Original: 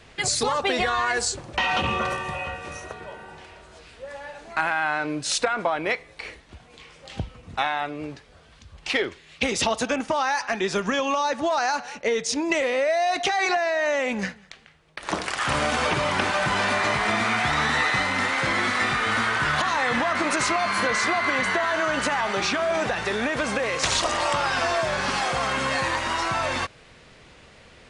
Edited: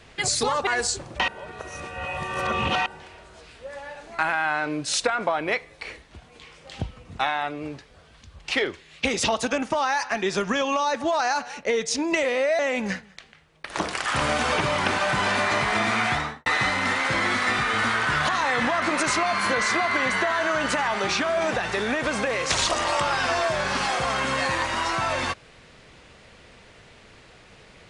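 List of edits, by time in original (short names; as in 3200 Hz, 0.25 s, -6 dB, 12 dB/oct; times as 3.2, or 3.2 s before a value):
0.67–1.05 cut
1.66–3.24 reverse
12.97–13.92 cut
17.42–17.79 studio fade out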